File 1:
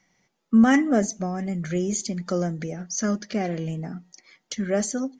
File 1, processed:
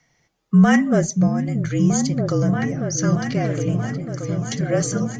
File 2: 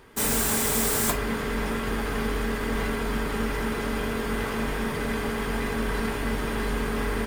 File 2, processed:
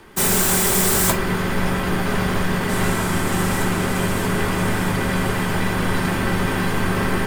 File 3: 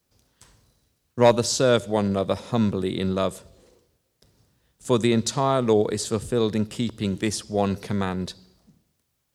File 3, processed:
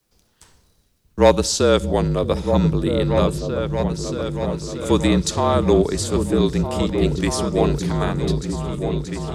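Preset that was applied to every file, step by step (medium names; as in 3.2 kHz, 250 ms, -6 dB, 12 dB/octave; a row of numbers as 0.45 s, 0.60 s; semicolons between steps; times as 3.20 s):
frequency shift -41 Hz; delay with an opening low-pass 630 ms, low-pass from 200 Hz, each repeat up 2 oct, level -3 dB; normalise loudness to -20 LUFS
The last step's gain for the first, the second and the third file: +3.0 dB, +6.5 dB, +3.0 dB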